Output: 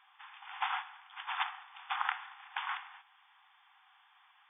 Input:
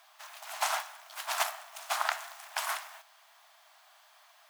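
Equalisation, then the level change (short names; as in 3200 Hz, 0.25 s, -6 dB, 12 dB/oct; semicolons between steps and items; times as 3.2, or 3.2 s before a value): brick-wall FIR band-pass 730–3600 Hz; -2.5 dB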